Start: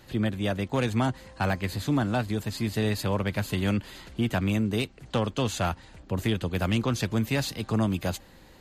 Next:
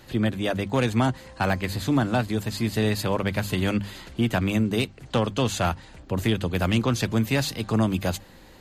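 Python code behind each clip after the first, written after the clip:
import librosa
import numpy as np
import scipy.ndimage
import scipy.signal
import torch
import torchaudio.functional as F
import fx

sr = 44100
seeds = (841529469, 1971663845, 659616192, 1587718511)

y = fx.hum_notches(x, sr, base_hz=50, count=4)
y = F.gain(torch.from_numpy(y), 3.5).numpy()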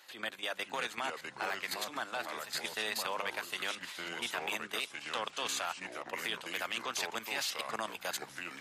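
y = scipy.signal.sosfilt(scipy.signal.butter(2, 960.0, 'highpass', fs=sr, output='sos'), x)
y = fx.level_steps(y, sr, step_db=12)
y = fx.echo_pitch(y, sr, ms=497, semitones=-4, count=2, db_per_echo=-6.0)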